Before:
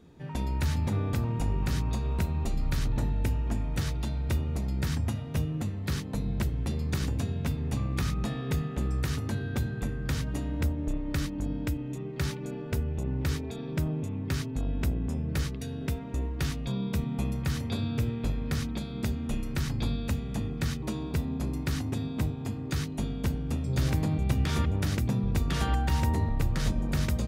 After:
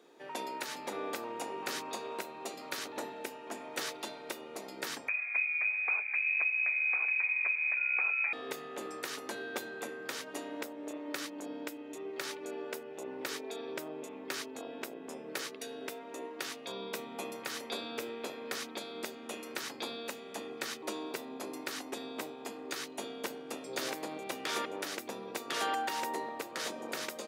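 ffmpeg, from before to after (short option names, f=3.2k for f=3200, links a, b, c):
-filter_complex "[0:a]asettb=1/sr,asplit=3[a][b][c];[a]atrim=end=5.084[d];[b]atrim=start=5.08:end=8.33,asetpts=PTS-STARTPTS,afade=t=in:d=0.004:c=qsin,afade=t=out:st=3.246:d=0.004:c=qsin,lowpass=f=2.2k:t=q:w=0.5098,lowpass=f=2.2k:t=q:w=0.6013,lowpass=f=2.2k:t=q:w=0.9,lowpass=f=2.2k:t=q:w=2.563,afreqshift=-2600[e];[c]atrim=start=8.326[f];[d][e]acrossfade=d=0.004:c1=hsin:c2=qsin[g];[g][f]acrossfade=d=0.004:c1=qsin:c2=hsin,highpass=f=370:w=0.5412,highpass=f=370:w=1.3066,alimiter=level_in=0.5dB:limit=-24dB:level=0:latency=1:release=423,volume=-0.5dB,volume=2dB"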